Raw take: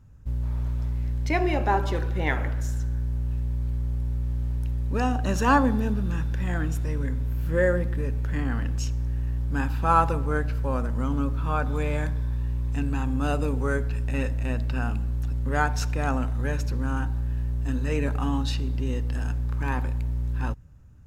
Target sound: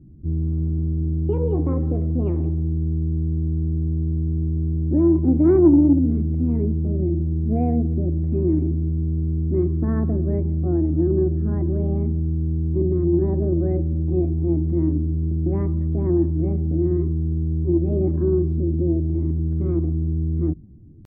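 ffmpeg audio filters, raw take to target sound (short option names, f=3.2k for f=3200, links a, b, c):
-af "asetrate=58866,aresample=44100,atempo=0.749154,lowpass=f=310:t=q:w=3.6,acontrast=35,volume=-2dB"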